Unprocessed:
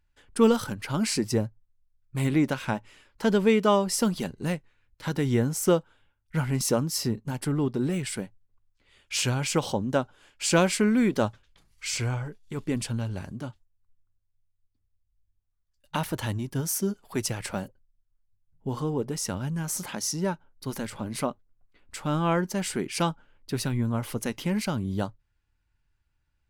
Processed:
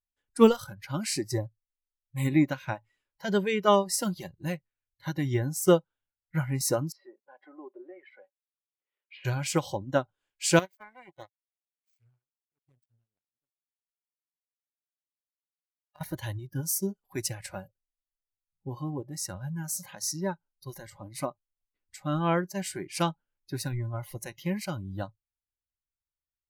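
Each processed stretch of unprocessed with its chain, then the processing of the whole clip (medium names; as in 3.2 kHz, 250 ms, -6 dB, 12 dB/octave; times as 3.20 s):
6.92–9.25 s: low-pass that closes with the level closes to 1.9 kHz, closed at -23.5 dBFS + high-pass 390 Hz 24 dB/octave + distance through air 390 m
10.59–16.01 s: power-law waveshaper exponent 3 + overload inside the chain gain 21.5 dB
whole clip: spectral noise reduction 18 dB; treble shelf 12 kHz +6.5 dB; upward expansion 1.5:1, over -39 dBFS; trim +3 dB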